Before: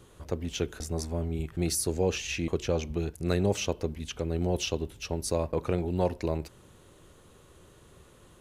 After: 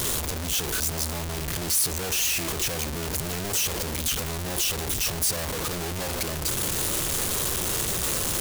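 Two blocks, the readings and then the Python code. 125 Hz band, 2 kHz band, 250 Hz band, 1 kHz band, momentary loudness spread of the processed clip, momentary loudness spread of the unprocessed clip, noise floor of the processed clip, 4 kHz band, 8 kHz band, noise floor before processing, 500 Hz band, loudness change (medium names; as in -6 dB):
0.0 dB, +9.0 dB, -2.5 dB, +5.0 dB, 6 LU, 7 LU, -31 dBFS, +10.5 dB, +13.0 dB, -56 dBFS, -3.5 dB, +5.5 dB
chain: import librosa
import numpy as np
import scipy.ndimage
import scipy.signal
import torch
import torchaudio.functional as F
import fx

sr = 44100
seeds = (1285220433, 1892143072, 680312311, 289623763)

y = np.sign(x) * np.sqrt(np.mean(np.square(x)))
y = fx.high_shelf(y, sr, hz=3900.0, db=11.5)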